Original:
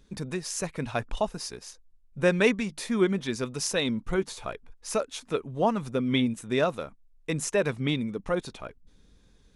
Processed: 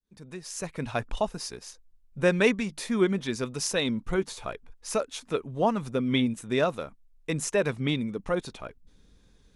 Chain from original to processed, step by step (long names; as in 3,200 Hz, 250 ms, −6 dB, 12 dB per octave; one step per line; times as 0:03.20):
fade in at the beginning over 0.89 s